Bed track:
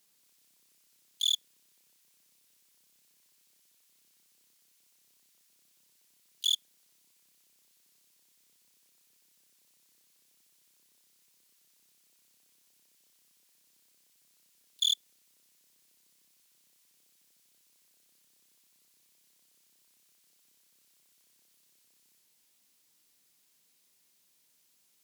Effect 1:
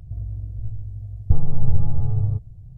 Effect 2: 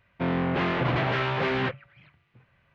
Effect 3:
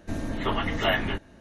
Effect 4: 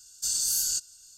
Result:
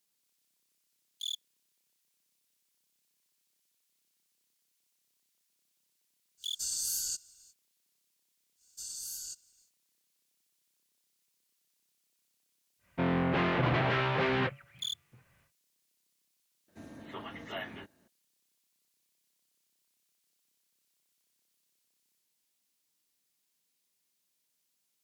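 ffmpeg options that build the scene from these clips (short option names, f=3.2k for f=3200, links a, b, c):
-filter_complex "[4:a]asplit=2[a][b];[0:a]volume=-9.5dB[c];[b]bandreject=f=1.9k:w=8.2[d];[3:a]highpass=130[e];[a]atrim=end=1.17,asetpts=PTS-STARTPTS,volume=-7dB,afade=t=in:d=0.05,afade=t=out:st=1.12:d=0.05,adelay=6370[f];[d]atrim=end=1.17,asetpts=PTS-STARTPTS,volume=-14.5dB,afade=t=in:d=0.1,afade=t=out:st=1.07:d=0.1,adelay=8550[g];[2:a]atrim=end=2.74,asetpts=PTS-STARTPTS,volume=-3dB,afade=t=in:d=0.1,afade=t=out:st=2.64:d=0.1,adelay=12780[h];[e]atrim=end=1.4,asetpts=PTS-STARTPTS,volume=-15.5dB,afade=t=in:d=0.004:c=hsin,afade=t=out:st=1.396:d=0.004:c=hsin,adelay=735588S[i];[c][f][g][h][i]amix=inputs=5:normalize=0"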